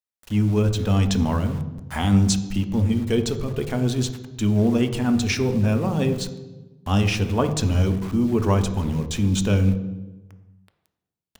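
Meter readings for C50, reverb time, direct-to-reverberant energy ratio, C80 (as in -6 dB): 11.0 dB, 1.1 s, 8.0 dB, 13.0 dB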